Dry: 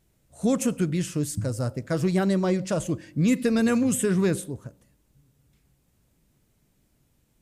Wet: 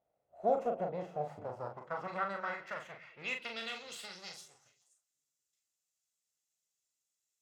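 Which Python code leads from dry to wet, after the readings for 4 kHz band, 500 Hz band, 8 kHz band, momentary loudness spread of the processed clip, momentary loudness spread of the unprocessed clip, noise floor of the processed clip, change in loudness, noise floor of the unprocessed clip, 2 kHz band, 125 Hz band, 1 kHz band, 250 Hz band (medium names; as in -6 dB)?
-6.0 dB, -10.5 dB, -22.5 dB, 13 LU, 8 LU, under -85 dBFS, -13.5 dB, -68 dBFS, -6.0 dB, -25.0 dB, -1.0 dB, -26.5 dB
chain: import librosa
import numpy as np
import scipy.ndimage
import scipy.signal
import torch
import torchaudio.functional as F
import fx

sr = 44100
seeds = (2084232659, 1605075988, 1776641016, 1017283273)

y = fx.lower_of_two(x, sr, delay_ms=1.5)
y = fx.peak_eq(y, sr, hz=8900.0, db=-9.5, octaves=0.78)
y = fx.doubler(y, sr, ms=40.0, db=-5.0)
y = fx.echo_stepped(y, sr, ms=105, hz=150.0, octaves=1.4, feedback_pct=70, wet_db=-9.5)
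y = fx.filter_sweep_bandpass(y, sr, from_hz=670.0, to_hz=7200.0, start_s=1.26, end_s=4.86, q=3.1)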